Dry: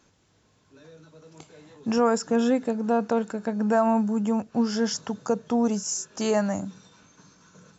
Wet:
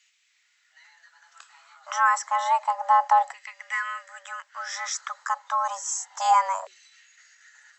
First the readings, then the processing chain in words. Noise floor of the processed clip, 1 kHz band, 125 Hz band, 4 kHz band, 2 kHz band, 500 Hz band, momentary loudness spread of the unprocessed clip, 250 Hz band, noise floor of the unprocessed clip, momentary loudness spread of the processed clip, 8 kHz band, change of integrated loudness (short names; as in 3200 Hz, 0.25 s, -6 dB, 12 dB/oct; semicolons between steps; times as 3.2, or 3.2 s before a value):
-67 dBFS, +9.0 dB, under -40 dB, -1.0 dB, +8.0 dB, -14.5 dB, 7 LU, under -40 dB, -64 dBFS, 16 LU, n/a, +0.5 dB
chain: LFO high-pass saw down 0.3 Hz 400–2100 Hz; frequency shift +370 Hz